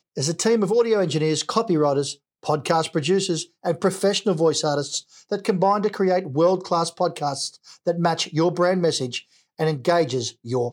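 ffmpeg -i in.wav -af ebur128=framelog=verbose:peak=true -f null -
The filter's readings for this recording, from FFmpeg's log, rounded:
Integrated loudness:
  I:         -22.3 LUFS
  Threshold: -32.4 LUFS
Loudness range:
  LRA:         1.4 LU
  Threshold: -42.5 LUFS
  LRA low:   -23.2 LUFS
  LRA high:  -21.7 LUFS
True peak:
  Peak:       -5.1 dBFS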